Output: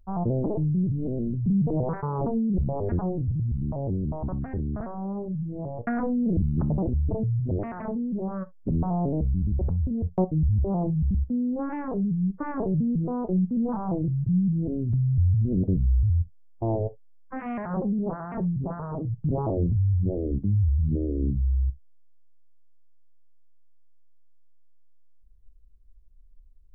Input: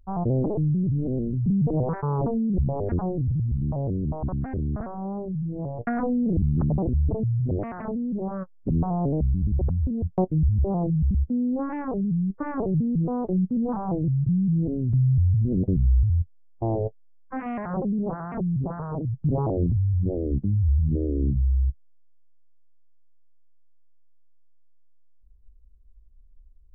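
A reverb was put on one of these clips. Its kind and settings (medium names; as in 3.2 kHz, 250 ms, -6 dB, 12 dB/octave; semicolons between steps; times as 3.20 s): gated-style reverb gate 90 ms falling, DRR 11 dB; trim -1.5 dB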